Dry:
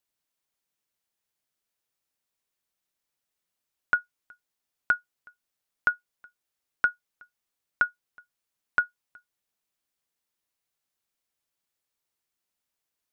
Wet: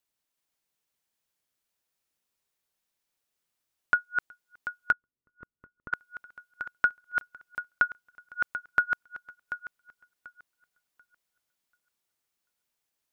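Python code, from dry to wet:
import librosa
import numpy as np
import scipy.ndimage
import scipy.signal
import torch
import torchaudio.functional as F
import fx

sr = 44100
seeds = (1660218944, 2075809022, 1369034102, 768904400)

y = fx.reverse_delay_fb(x, sr, ms=369, feedback_pct=46, wet_db=-4.5)
y = fx.moving_average(y, sr, points=57, at=(4.92, 5.93))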